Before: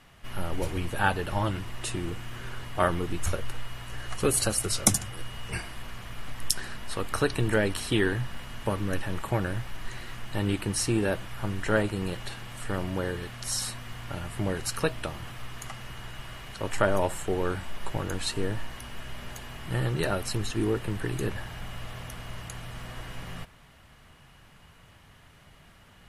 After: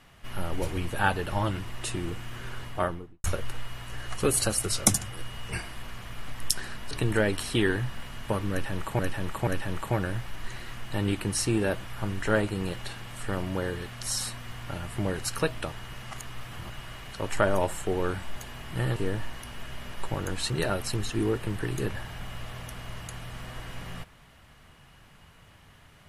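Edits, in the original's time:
0:02.61–0:03.24: fade out and dull
0:06.91–0:07.28: remove
0:08.88–0:09.36: repeat, 3 plays
0:15.13–0:16.11: reverse
0:17.77–0:18.33: swap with 0:19.31–0:19.91

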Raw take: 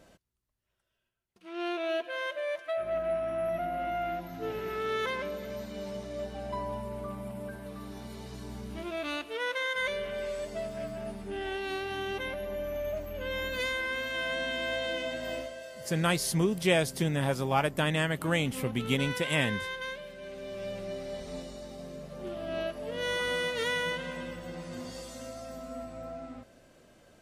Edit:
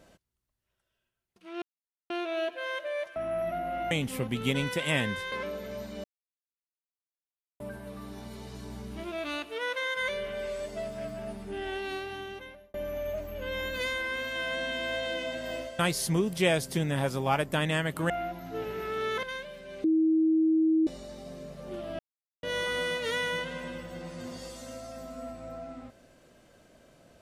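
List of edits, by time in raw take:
0:01.62: splice in silence 0.48 s
0:02.68–0:03.23: remove
0:03.98–0:05.11: swap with 0:18.35–0:19.76
0:05.83–0:07.39: silence
0:11.63–0:12.53: fade out
0:15.58–0:16.04: remove
0:20.37–0:21.40: beep over 319 Hz −20.5 dBFS
0:22.52–0:22.96: silence

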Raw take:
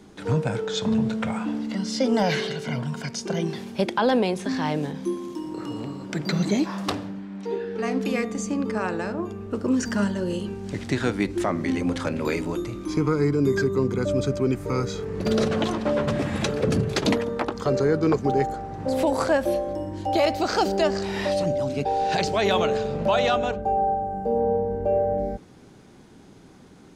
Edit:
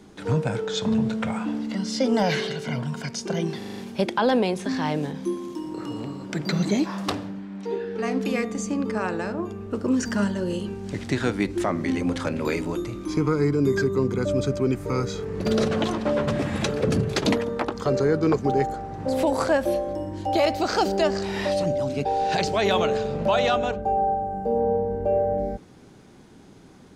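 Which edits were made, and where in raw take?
0:03.58: stutter 0.04 s, 6 plays

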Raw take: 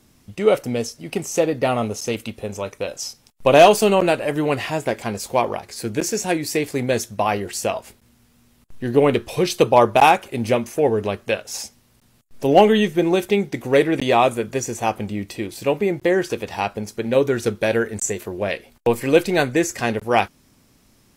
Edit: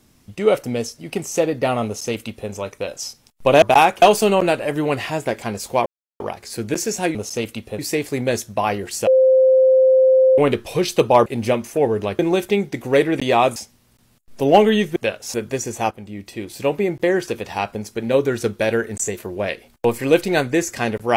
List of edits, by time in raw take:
0:01.86–0:02.50: duplicate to 0:06.41
0:05.46: splice in silence 0.34 s
0:07.69–0:09.00: beep over 522 Hz −9.5 dBFS
0:09.88–0:10.28: move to 0:03.62
0:11.21–0:11.59: swap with 0:12.99–0:14.36
0:14.93–0:15.64: fade in, from −12.5 dB

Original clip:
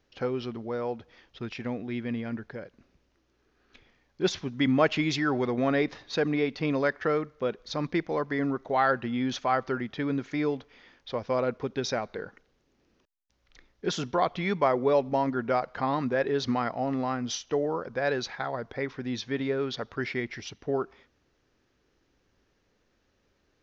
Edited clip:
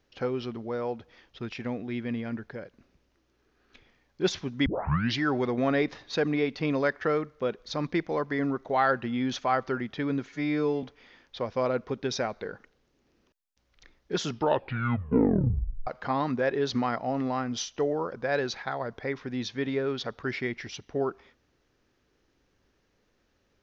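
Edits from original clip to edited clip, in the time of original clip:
0:04.66: tape start 0.54 s
0:10.29–0:10.56: time-stretch 2×
0:13.98: tape stop 1.62 s

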